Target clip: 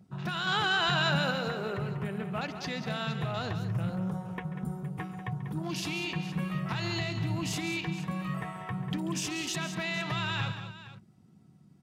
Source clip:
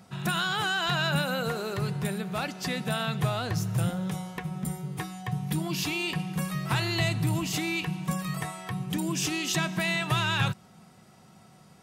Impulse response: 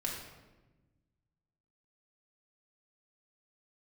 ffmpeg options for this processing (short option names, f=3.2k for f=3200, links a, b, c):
-filter_complex "[0:a]alimiter=limit=-22dB:level=0:latency=1:release=147,asettb=1/sr,asplit=3[a][b][c];[a]atrim=end=0.474[d];[b]atrim=start=0.47:end=1.31,asetpts=PTS-STARTPTS,afade=t=in:d=0.004:c=qsin,afade=t=out:st=0.836:d=0.004:c=qsin,acontrast=20[e];[c]atrim=start=1.306[f];[d][e]acrossfade=d=0.004:c1=hsin:c2=qsin[g];[g][f]acrossfade=d=0.004:c1=qsin:c2=hsin,afwtdn=0.00631,aecho=1:1:138|192|466:0.158|0.299|0.168,volume=-2dB"